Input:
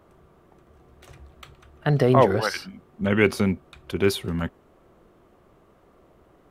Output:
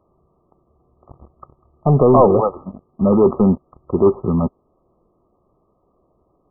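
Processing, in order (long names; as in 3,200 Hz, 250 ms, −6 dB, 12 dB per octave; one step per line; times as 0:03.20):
dynamic equaliser 100 Hz, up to −7 dB, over −41 dBFS, Q 1.9
leveller curve on the samples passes 3
linear-phase brick-wall low-pass 1,300 Hz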